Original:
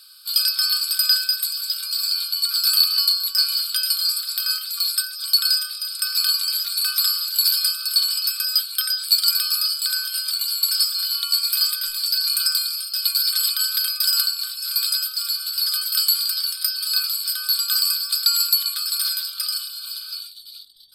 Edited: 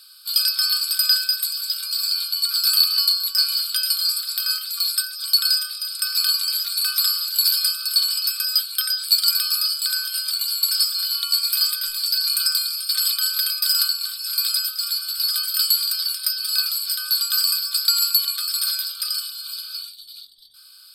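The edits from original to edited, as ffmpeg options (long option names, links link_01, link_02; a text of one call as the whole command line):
ffmpeg -i in.wav -filter_complex "[0:a]asplit=2[link_01][link_02];[link_01]atrim=end=12.892[link_03];[link_02]atrim=start=13.268[link_04];[link_03][link_04]acrossfade=duration=0.004:curve1=hsin:curve2=hsin" out.wav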